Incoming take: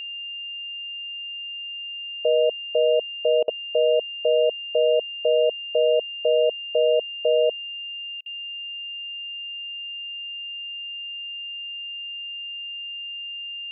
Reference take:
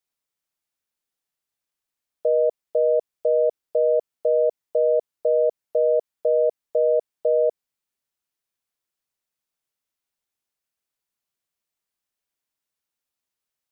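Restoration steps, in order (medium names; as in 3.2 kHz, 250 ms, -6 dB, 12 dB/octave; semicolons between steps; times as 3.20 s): band-stop 2.8 kHz, Q 30; interpolate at 3.43/8.21 s, 48 ms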